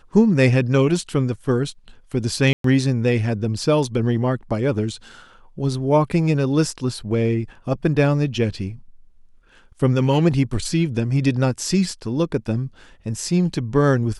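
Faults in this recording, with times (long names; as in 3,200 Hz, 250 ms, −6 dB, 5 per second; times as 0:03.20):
0:02.53–0:02.64: drop-out 113 ms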